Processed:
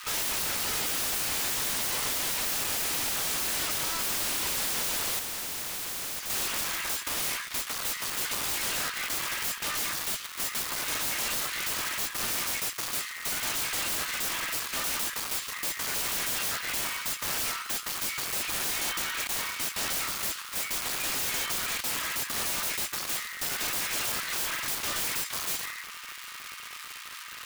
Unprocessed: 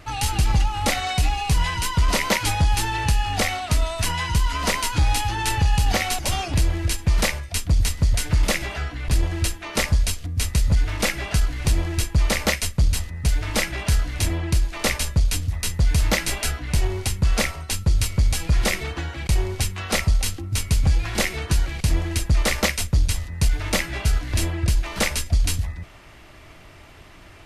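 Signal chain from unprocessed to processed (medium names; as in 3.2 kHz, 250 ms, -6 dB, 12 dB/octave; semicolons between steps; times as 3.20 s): comb filter that takes the minimum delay 3.2 ms; crackle 460 per s -35 dBFS; short-mantissa float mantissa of 2-bit; elliptic high-pass 1.1 kHz, stop band 70 dB; peak limiter -21 dBFS, peak gain reduction 10 dB; integer overflow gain 33 dB; 5.19–6.30 s: spectrum-flattening compressor 2:1; trim +8 dB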